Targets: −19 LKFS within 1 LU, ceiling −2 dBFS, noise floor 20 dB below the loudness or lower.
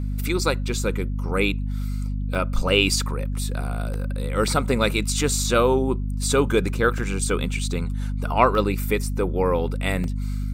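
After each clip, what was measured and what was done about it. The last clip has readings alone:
number of dropouts 8; longest dropout 1.4 ms; mains hum 50 Hz; hum harmonics up to 250 Hz; level of the hum −23 dBFS; integrated loudness −23.5 LKFS; sample peak −3.0 dBFS; target loudness −19.0 LKFS
→ repair the gap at 0:02.35/0:03.94/0:04.48/0:05.29/0:06.23/0:06.98/0:08.55/0:10.04, 1.4 ms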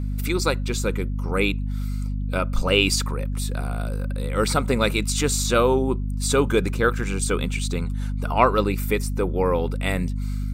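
number of dropouts 0; mains hum 50 Hz; hum harmonics up to 250 Hz; level of the hum −23 dBFS
→ mains-hum notches 50/100/150/200/250 Hz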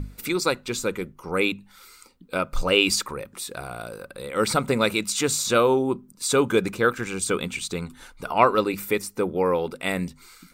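mains hum none found; integrated loudness −24.0 LKFS; sample peak −2.5 dBFS; target loudness −19.0 LKFS
→ level +5 dB
brickwall limiter −2 dBFS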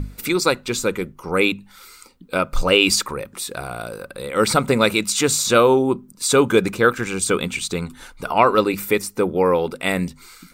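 integrated loudness −19.5 LKFS; sample peak −2.0 dBFS; background noise floor −49 dBFS

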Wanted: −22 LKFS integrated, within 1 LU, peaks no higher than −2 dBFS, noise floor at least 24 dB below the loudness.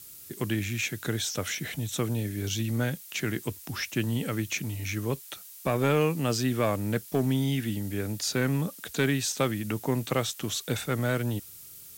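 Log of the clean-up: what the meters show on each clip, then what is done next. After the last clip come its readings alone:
share of clipped samples 0.3%; peaks flattened at −16.5 dBFS; background noise floor −47 dBFS; target noise floor −54 dBFS; integrated loudness −29.5 LKFS; sample peak −16.5 dBFS; target loudness −22.0 LKFS
→ clipped peaks rebuilt −16.5 dBFS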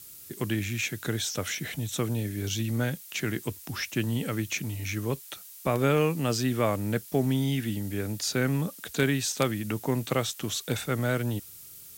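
share of clipped samples 0.0%; background noise floor −47 dBFS; target noise floor −53 dBFS
→ broadband denoise 6 dB, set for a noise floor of −47 dBFS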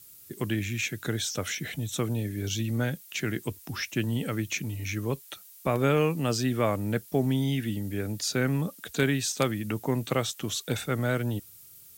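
background noise floor −51 dBFS; target noise floor −54 dBFS
→ broadband denoise 6 dB, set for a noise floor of −51 dBFS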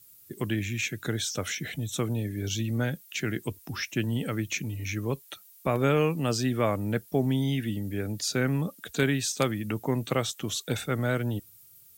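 background noise floor −55 dBFS; integrated loudness −29.5 LKFS; sample peak −8.0 dBFS; target loudness −22.0 LKFS
→ level +7.5 dB
brickwall limiter −2 dBFS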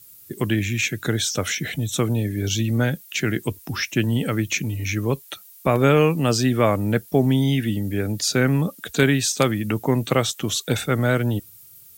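integrated loudness −22.0 LKFS; sample peak −2.0 dBFS; background noise floor −47 dBFS

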